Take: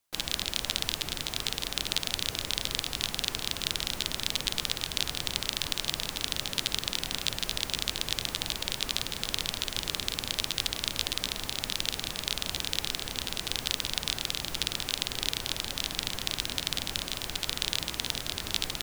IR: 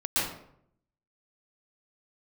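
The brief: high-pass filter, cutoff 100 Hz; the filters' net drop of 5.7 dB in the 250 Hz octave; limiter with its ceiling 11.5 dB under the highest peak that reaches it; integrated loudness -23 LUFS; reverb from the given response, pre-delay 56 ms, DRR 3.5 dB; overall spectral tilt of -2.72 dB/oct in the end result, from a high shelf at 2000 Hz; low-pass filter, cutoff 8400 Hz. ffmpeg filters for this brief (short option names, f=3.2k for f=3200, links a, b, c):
-filter_complex "[0:a]highpass=100,lowpass=8.4k,equalizer=f=250:t=o:g=-7.5,highshelf=f=2k:g=-8.5,alimiter=level_in=0.5dB:limit=-24dB:level=0:latency=1,volume=-0.5dB,asplit=2[a][b];[1:a]atrim=start_sample=2205,adelay=56[c];[b][c]afir=irnorm=-1:irlink=0,volume=-14dB[d];[a][d]amix=inputs=2:normalize=0,volume=19dB"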